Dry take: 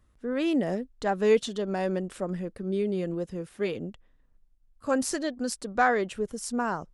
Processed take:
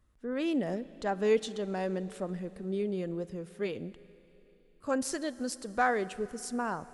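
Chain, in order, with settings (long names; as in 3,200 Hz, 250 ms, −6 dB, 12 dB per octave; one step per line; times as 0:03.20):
four-comb reverb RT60 3.9 s, combs from 32 ms, DRR 17 dB
level −4.5 dB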